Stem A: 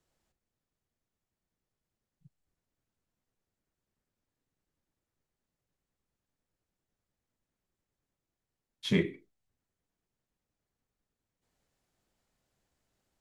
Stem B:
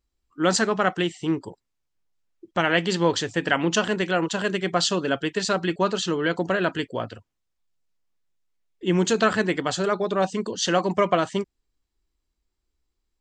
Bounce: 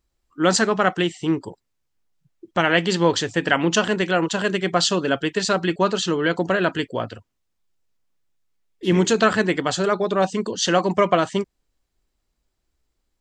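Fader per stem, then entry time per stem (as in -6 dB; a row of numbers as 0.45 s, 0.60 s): -3.0 dB, +3.0 dB; 0.00 s, 0.00 s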